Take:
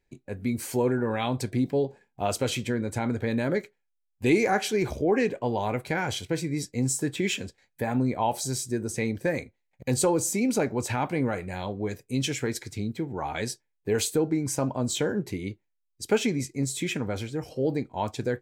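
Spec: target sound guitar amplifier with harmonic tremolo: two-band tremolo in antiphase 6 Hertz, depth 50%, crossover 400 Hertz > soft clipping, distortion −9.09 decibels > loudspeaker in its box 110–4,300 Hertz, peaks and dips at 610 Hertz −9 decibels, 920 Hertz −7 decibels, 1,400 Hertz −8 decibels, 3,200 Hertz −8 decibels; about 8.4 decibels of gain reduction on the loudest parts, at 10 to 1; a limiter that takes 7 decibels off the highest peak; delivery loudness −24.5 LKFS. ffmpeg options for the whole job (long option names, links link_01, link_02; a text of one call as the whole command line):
ffmpeg -i in.wav -filter_complex "[0:a]acompressor=threshold=-26dB:ratio=10,alimiter=limit=-23.5dB:level=0:latency=1,acrossover=split=400[link_01][link_02];[link_01]aeval=exprs='val(0)*(1-0.5/2+0.5/2*cos(2*PI*6*n/s))':channel_layout=same[link_03];[link_02]aeval=exprs='val(0)*(1-0.5/2-0.5/2*cos(2*PI*6*n/s))':channel_layout=same[link_04];[link_03][link_04]amix=inputs=2:normalize=0,asoftclip=threshold=-36.5dB,highpass=110,equalizer=frequency=610:width_type=q:width=4:gain=-9,equalizer=frequency=920:width_type=q:width=4:gain=-7,equalizer=frequency=1400:width_type=q:width=4:gain=-8,equalizer=frequency=3200:width_type=q:width=4:gain=-8,lowpass=frequency=4300:width=0.5412,lowpass=frequency=4300:width=1.3066,volume=19.5dB" out.wav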